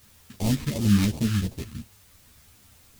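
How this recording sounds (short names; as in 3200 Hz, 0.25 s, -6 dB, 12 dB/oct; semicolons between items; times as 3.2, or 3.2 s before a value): aliases and images of a low sample rate 1500 Hz, jitter 20%; phasing stages 2, 2.8 Hz, lowest notch 600–1500 Hz; a quantiser's noise floor 10-bit, dither triangular; a shimmering, thickened sound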